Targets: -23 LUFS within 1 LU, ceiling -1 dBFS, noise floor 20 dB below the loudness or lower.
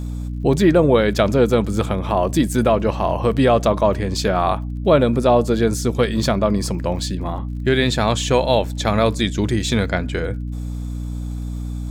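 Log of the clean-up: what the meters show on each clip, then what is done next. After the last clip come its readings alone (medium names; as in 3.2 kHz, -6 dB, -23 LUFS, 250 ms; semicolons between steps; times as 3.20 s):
tick rate 47 per s; hum 60 Hz; highest harmonic 300 Hz; hum level -24 dBFS; loudness -19.0 LUFS; peak level -3.0 dBFS; loudness target -23.0 LUFS
-> de-click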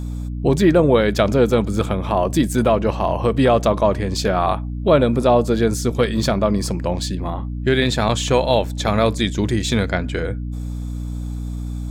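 tick rate 1.3 per s; hum 60 Hz; highest harmonic 300 Hz; hum level -24 dBFS
-> hum notches 60/120/180/240/300 Hz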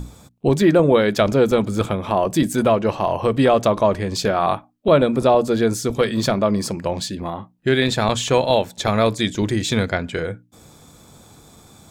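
hum not found; loudness -19.0 LUFS; peak level -3.5 dBFS; loudness target -23.0 LUFS
-> trim -4 dB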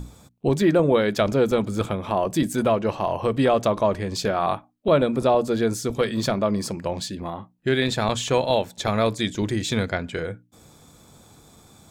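loudness -23.0 LUFS; peak level -7.5 dBFS; noise floor -56 dBFS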